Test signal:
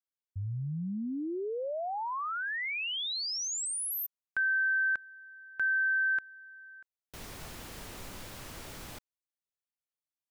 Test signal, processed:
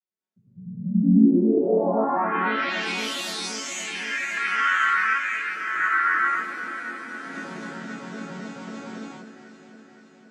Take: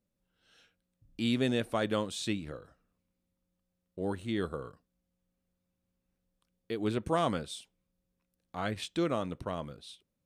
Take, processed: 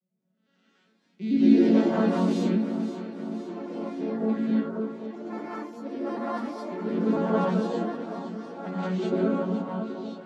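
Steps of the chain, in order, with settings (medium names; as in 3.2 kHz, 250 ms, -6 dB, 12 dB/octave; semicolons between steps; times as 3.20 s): vocoder on a broken chord minor triad, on F#3, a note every 93 ms; ever faster or slower copies 406 ms, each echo +4 st, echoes 2, each echo -6 dB; on a send: echo whose repeats swap between lows and highs 259 ms, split 1.2 kHz, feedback 78%, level -8.5 dB; on the sum: gated-style reverb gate 250 ms rising, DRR -8 dB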